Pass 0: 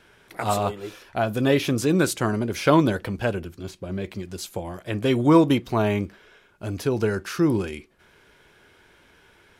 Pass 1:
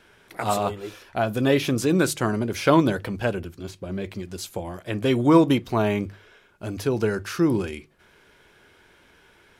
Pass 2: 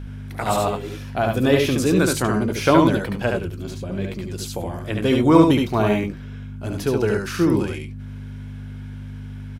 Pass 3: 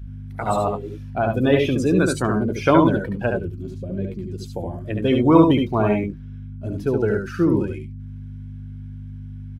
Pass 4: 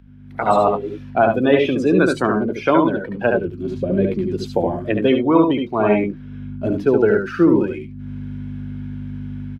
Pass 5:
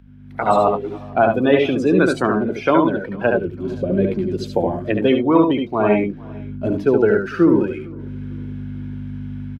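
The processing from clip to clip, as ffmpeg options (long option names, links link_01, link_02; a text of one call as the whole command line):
ffmpeg -i in.wav -af "bandreject=frequency=50:width_type=h:width=6,bandreject=frequency=100:width_type=h:width=6,bandreject=frequency=150:width_type=h:width=6" out.wav
ffmpeg -i in.wav -filter_complex "[0:a]aeval=exprs='val(0)+0.0224*(sin(2*PI*50*n/s)+sin(2*PI*2*50*n/s)/2+sin(2*PI*3*50*n/s)/3+sin(2*PI*4*50*n/s)/4+sin(2*PI*5*50*n/s)/5)':channel_layout=same,asplit=2[link_01][link_02];[link_02]aecho=0:1:72|91:0.668|0.237[link_03];[link_01][link_03]amix=inputs=2:normalize=0,volume=1.5dB" out.wav
ffmpeg -i in.wav -af "afftdn=noise_reduction=16:noise_floor=-27" out.wav
ffmpeg -i in.wav -filter_complex "[0:a]dynaudnorm=framelen=180:gausssize=3:maxgain=15.5dB,acrossover=split=190 4300:gain=0.2 1 0.2[link_01][link_02][link_03];[link_01][link_02][link_03]amix=inputs=3:normalize=0,volume=-1dB" out.wav
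ffmpeg -i in.wav -filter_complex "[0:a]asplit=2[link_01][link_02];[link_02]adelay=451,lowpass=frequency=3500:poles=1,volume=-24dB,asplit=2[link_03][link_04];[link_04]adelay=451,lowpass=frequency=3500:poles=1,volume=0.42,asplit=2[link_05][link_06];[link_06]adelay=451,lowpass=frequency=3500:poles=1,volume=0.42[link_07];[link_01][link_03][link_05][link_07]amix=inputs=4:normalize=0" out.wav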